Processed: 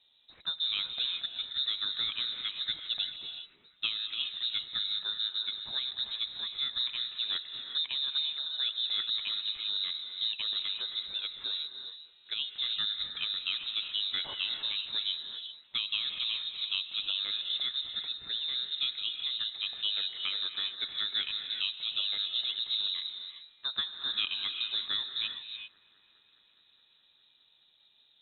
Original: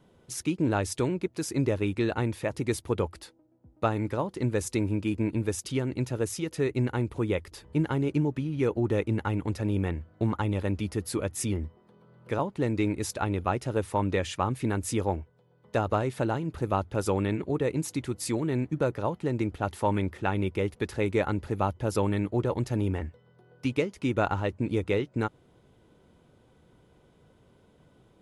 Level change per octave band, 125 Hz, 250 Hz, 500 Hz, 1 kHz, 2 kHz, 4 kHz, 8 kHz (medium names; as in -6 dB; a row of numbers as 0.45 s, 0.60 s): under -35 dB, under -30 dB, under -30 dB, -19.0 dB, -4.0 dB, +18.0 dB, under -40 dB